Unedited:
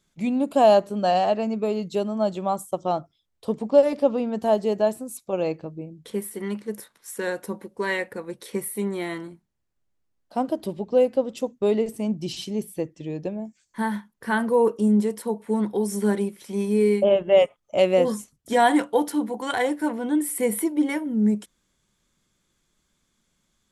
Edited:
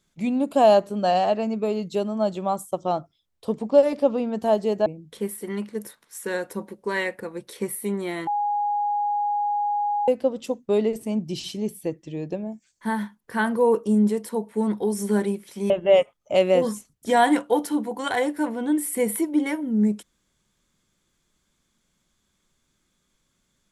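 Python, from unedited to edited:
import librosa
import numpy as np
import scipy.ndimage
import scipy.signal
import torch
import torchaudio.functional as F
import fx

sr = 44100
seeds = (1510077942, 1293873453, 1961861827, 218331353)

y = fx.edit(x, sr, fx.cut(start_s=4.86, length_s=0.93),
    fx.bleep(start_s=9.2, length_s=1.81, hz=825.0, db=-21.0),
    fx.cut(start_s=16.63, length_s=0.5), tone=tone)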